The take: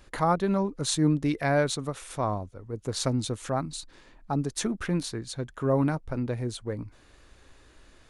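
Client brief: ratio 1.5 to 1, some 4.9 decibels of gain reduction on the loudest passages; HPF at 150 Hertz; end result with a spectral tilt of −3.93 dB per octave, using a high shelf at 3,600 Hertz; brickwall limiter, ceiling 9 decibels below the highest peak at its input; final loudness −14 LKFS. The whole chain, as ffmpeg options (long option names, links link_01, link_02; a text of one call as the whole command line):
ffmpeg -i in.wav -af "highpass=150,highshelf=frequency=3600:gain=9,acompressor=threshold=-32dB:ratio=1.5,volume=19dB,alimiter=limit=-1.5dB:level=0:latency=1" out.wav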